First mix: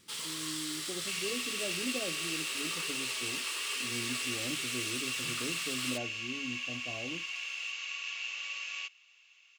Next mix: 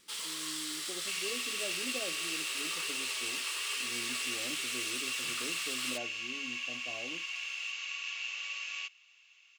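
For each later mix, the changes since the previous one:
master: add parametric band 110 Hz −13 dB 2.3 octaves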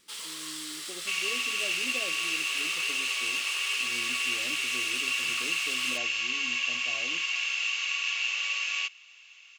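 second sound +9.0 dB

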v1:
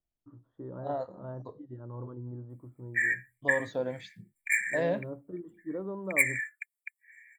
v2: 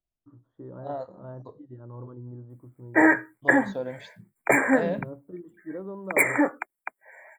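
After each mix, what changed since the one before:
background: remove Chebyshev high-pass with heavy ripple 1,700 Hz, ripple 6 dB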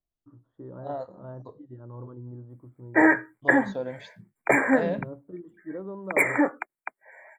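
background: add high-shelf EQ 6,800 Hz −10.5 dB

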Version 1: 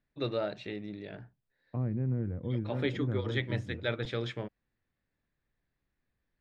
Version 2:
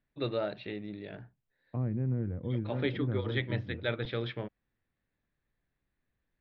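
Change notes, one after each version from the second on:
master: add Butterworth low-pass 4,400 Hz 36 dB per octave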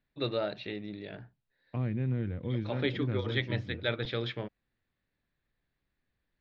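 second voice: remove low-pass filter 1,200 Hz 12 dB per octave
master: remove high-frequency loss of the air 180 metres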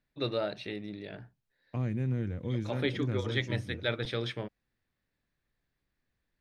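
first voice: add Savitzky-Golay smoothing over 15 samples
master: remove Butterworth low-pass 4,400 Hz 36 dB per octave

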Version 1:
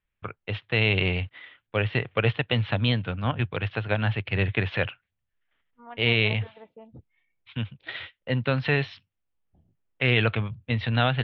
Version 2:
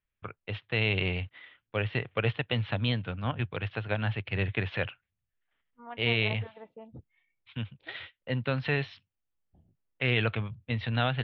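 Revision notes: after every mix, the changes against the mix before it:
first voice −5.0 dB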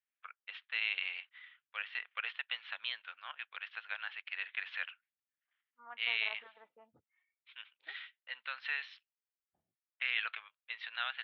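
first voice: add four-pole ladder high-pass 1,100 Hz, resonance 25%
second voice: add resonant band-pass 1,400 Hz, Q 2.4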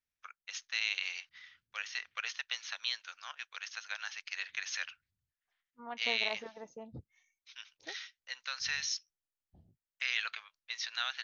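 second voice: remove resonant band-pass 1,400 Hz, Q 2.4
master: remove Butterworth low-pass 3,400 Hz 48 dB per octave

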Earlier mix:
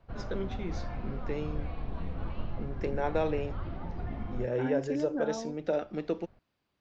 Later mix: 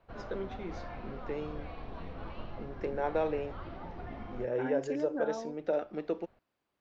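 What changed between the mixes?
first voice: add high-shelf EQ 3,200 Hz −11 dB
master: add bass and treble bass −9 dB, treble +1 dB

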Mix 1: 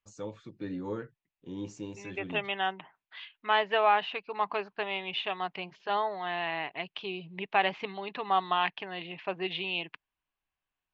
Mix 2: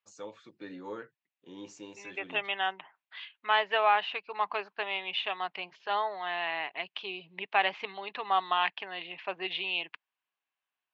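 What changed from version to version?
master: add meter weighting curve A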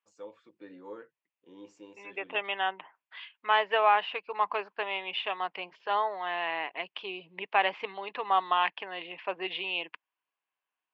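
first voice −7.5 dB
master: add thirty-one-band graphic EQ 125 Hz −10 dB, 315 Hz +4 dB, 500 Hz +7 dB, 1,000 Hz +4 dB, 4,000 Hz −6 dB, 6,300 Hz −8 dB

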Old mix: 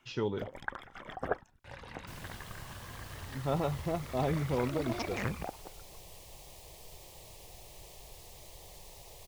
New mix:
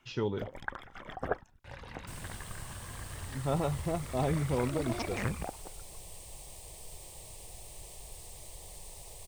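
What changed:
second sound: add parametric band 8,600 Hz +13 dB 0.34 octaves
master: add low-shelf EQ 98 Hz +5.5 dB

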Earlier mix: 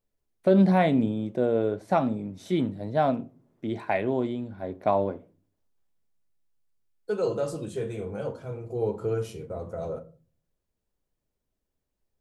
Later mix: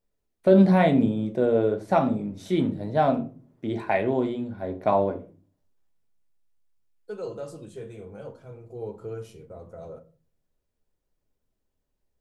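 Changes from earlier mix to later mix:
first voice: send +10.5 dB
second voice −7.5 dB

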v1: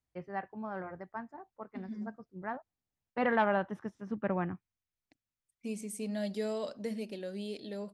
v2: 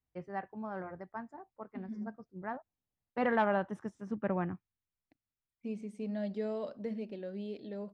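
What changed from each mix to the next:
first voice: remove high-frequency loss of the air 300 metres
master: add head-to-tape spacing loss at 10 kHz 28 dB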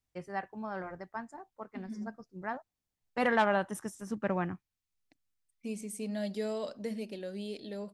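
first voice: remove high-pass filter 46 Hz
master: remove head-to-tape spacing loss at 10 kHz 28 dB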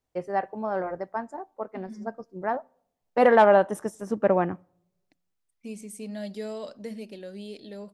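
first voice: add parametric band 530 Hz +12.5 dB 2 octaves
reverb: on, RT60 0.70 s

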